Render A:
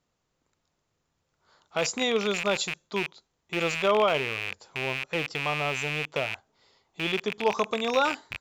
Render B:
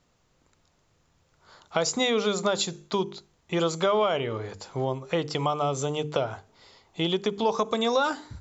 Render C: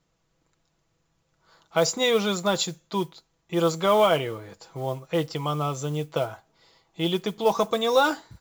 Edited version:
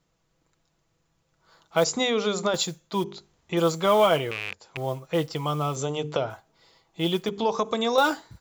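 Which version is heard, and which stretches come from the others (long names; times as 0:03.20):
C
0:01.84–0:02.54: punch in from B
0:03.04–0:03.57: punch in from B
0:04.31–0:04.77: punch in from A
0:05.76–0:06.30: punch in from B
0:07.29–0:07.98: punch in from B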